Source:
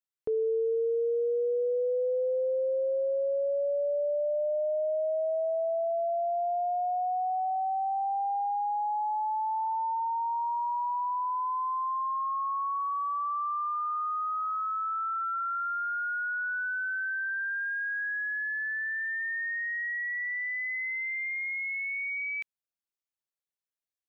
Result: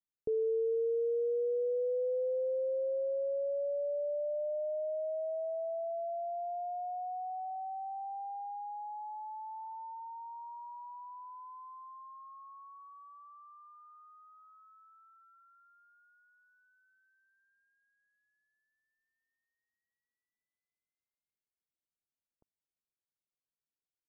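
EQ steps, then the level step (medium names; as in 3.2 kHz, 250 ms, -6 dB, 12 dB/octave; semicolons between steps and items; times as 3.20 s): Gaussian low-pass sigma 14 samples; 0.0 dB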